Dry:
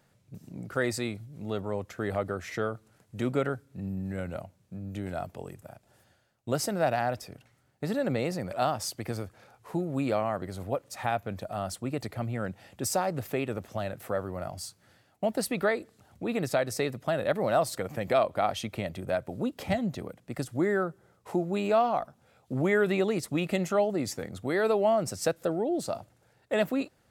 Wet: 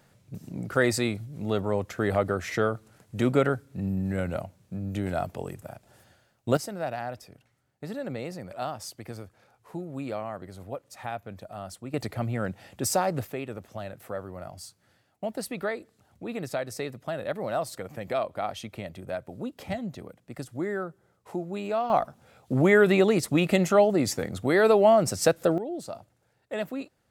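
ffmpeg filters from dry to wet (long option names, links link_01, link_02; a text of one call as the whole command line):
ffmpeg -i in.wav -af "asetnsamples=nb_out_samples=441:pad=0,asendcmd='6.57 volume volume -5.5dB;11.94 volume volume 3dB;13.25 volume volume -4dB;21.9 volume volume 6dB;25.58 volume volume -5dB',volume=5.5dB" out.wav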